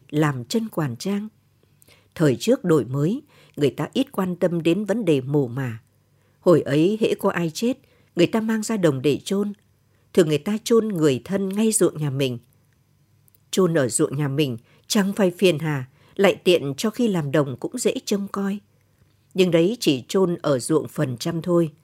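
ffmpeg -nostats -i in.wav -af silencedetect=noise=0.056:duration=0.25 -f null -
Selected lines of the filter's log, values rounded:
silence_start: 1.20
silence_end: 2.16 | silence_duration: 0.97
silence_start: 3.17
silence_end: 3.58 | silence_duration: 0.41
silence_start: 5.72
silence_end: 6.46 | silence_duration: 0.74
silence_start: 7.72
silence_end: 8.17 | silence_duration: 0.45
silence_start: 9.50
silence_end: 10.15 | silence_duration: 0.65
silence_start: 12.36
silence_end: 13.53 | silence_duration: 1.17
silence_start: 14.55
silence_end: 14.90 | silence_duration: 0.35
silence_start: 15.82
silence_end: 16.19 | silence_duration: 0.37
silence_start: 18.56
silence_end: 19.36 | silence_duration: 0.80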